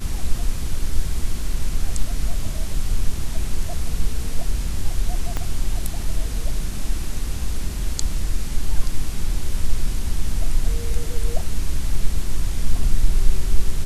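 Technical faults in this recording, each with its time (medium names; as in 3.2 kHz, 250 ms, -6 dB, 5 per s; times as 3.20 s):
5.37 s: pop -11 dBFS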